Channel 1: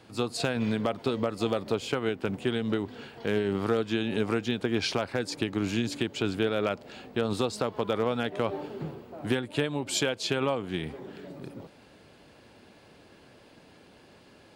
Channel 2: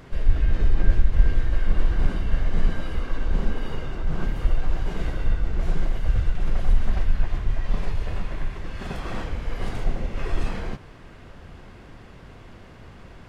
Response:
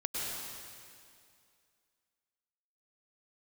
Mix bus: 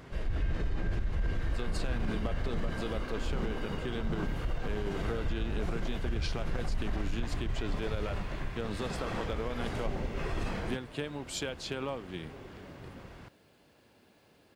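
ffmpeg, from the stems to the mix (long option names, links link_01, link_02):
-filter_complex "[0:a]acrusher=bits=10:mix=0:aa=0.000001,adelay=1400,volume=-8.5dB[link_01];[1:a]highpass=frequency=56:poles=1,volume=-3dB[link_02];[link_01][link_02]amix=inputs=2:normalize=0,alimiter=limit=-23.5dB:level=0:latency=1:release=39"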